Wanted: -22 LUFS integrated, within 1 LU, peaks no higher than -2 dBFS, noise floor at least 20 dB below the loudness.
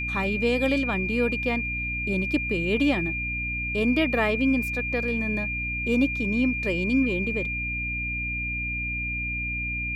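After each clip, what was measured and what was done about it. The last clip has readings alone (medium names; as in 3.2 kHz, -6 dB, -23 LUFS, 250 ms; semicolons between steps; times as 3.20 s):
hum 60 Hz; highest harmonic 300 Hz; hum level -32 dBFS; steady tone 2.4 kHz; tone level -28 dBFS; loudness -25.0 LUFS; peak level -11.0 dBFS; loudness target -22.0 LUFS
-> hum notches 60/120/180/240/300 Hz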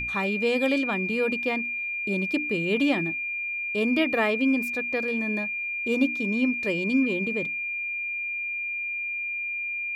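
hum not found; steady tone 2.4 kHz; tone level -28 dBFS
-> band-stop 2.4 kHz, Q 30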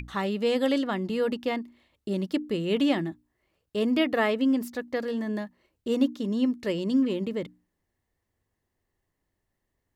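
steady tone not found; loudness -27.5 LUFS; peak level -12.0 dBFS; loudness target -22.0 LUFS
-> trim +5.5 dB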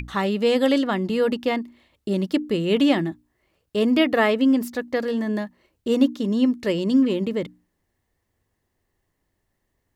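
loudness -22.0 LUFS; peak level -6.5 dBFS; noise floor -75 dBFS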